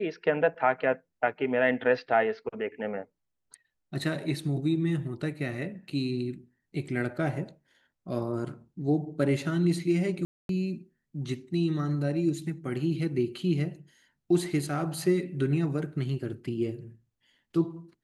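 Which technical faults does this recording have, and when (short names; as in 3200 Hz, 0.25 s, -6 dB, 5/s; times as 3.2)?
10.25–10.49 gap 0.242 s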